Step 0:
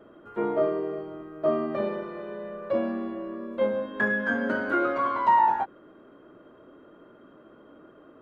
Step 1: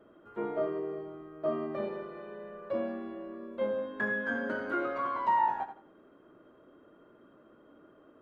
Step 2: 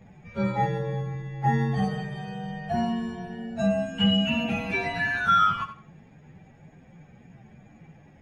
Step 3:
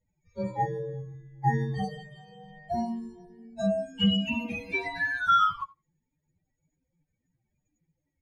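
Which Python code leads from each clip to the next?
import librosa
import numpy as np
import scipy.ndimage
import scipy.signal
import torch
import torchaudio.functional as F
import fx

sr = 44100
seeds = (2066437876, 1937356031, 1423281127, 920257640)

y1 = fx.echo_feedback(x, sr, ms=84, feedback_pct=23, wet_db=-10.5)
y1 = F.gain(torch.from_numpy(y1), -7.0).numpy()
y2 = fx.partial_stretch(y1, sr, pct=129)
y2 = fx.low_shelf_res(y2, sr, hz=230.0, db=12.5, q=3.0)
y2 = F.gain(torch.from_numpy(y2), 7.5).numpy()
y3 = fx.bin_expand(y2, sr, power=2.0)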